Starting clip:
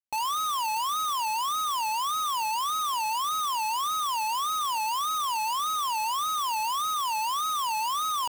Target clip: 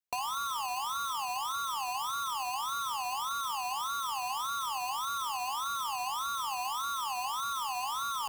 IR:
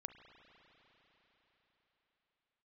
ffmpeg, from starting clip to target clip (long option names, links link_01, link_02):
-filter_complex "[0:a]aeval=exprs='val(0)*sin(2*PI*130*n/s)':channel_layout=same,bandreject=frequency=83.44:width_type=h:width=4,bandreject=frequency=166.88:width_type=h:width=4,bandreject=frequency=250.32:width_type=h:width=4,bandreject=frequency=333.76:width_type=h:width=4,bandreject=frequency=417.2:width_type=h:width=4,bandreject=frequency=500.64:width_type=h:width=4,bandreject=frequency=584.08:width_type=h:width=4,bandreject=frequency=667.52:width_type=h:width=4,bandreject=frequency=750.96:width_type=h:width=4,bandreject=frequency=834.4:width_type=h:width=4,bandreject=frequency=917.84:width_type=h:width=4,bandreject=frequency=1001.28:width_type=h:width=4,bandreject=frequency=1084.72:width_type=h:width=4,bandreject=frequency=1168.16:width_type=h:width=4,bandreject=frequency=1251.6:width_type=h:width=4,bandreject=frequency=1335.04:width_type=h:width=4,acrossover=split=190[link_01][link_02];[link_02]acompressor=threshold=-34dB:ratio=6[link_03];[link_01][link_03]amix=inputs=2:normalize=0,volume=3dB"